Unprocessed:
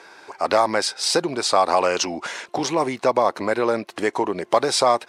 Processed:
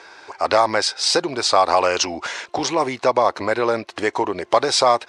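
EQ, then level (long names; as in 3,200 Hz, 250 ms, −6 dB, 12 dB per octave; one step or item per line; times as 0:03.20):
high-frequency loss of the air 92 metres
bass and treble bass +9 dB, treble +6 dB
parametric band 170 Hz −14 dB 1.6 octaves
+3.5 dB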